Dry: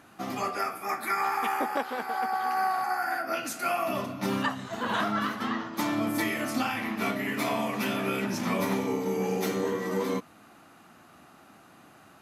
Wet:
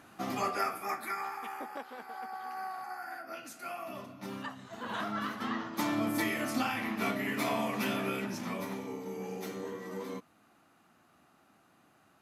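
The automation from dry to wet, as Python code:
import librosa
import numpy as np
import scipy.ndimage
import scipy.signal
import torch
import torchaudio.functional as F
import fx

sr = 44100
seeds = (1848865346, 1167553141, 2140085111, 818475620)

y = fx.gain(x, sr, db=fx.line((0.75, -1.5), (1.39, -12.5), (4.42, -12.5), (5.69, -3.0), (7.93, -3.0), (8.73, -11.0)))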